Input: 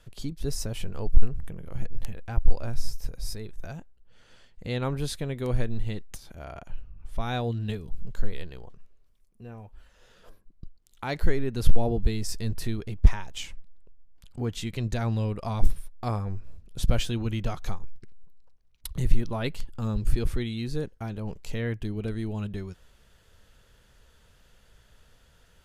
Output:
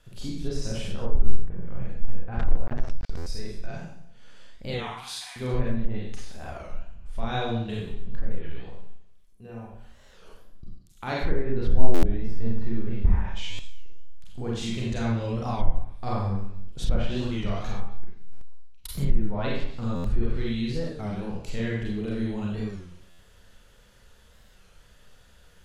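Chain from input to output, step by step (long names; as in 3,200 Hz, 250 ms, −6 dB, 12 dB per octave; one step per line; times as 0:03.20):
0:04.75–0:05.36: Chebyshev high-pass with heavy ripple 720 Hz, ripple 3 dB
in parallel at −3 dB: downward compressor 12 to 1, threshold −27 dBFS, peak gain reduction 19 dB
on the sum: four-comb reverb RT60 0.7 s, combs from 31 ms, DRR −4.5 dB
0:02.39–0:03.18: centre clipping without the shift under −19.5 dBFS
on a send: delay with a high-pass on its return 110 ms, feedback 55%, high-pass 2,500 Hz, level −18.5 dB
on the sum: treble cut that deepens with the level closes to 1,400 Hz, closed at −7.5 dBFS
buffer that repeats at 0:03.17/0:11.95/0:13.50/0:18.32/0:19.95/0:23.10, samples 512, times 7
wow of a warped record 33 1/3 rpm, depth 160 cents
level −7 dB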